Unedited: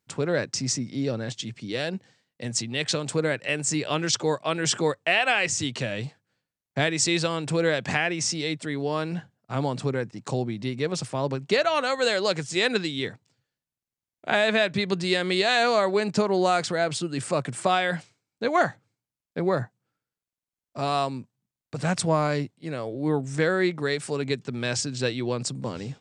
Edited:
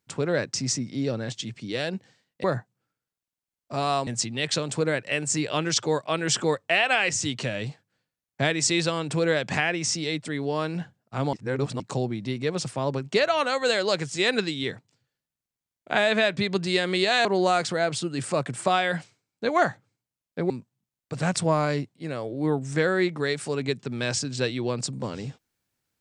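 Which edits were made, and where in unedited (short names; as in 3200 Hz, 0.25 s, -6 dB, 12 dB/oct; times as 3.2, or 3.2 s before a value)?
9.7–10.17 reverse
15.62–16.24 cut
19.49–21.12 move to 2.44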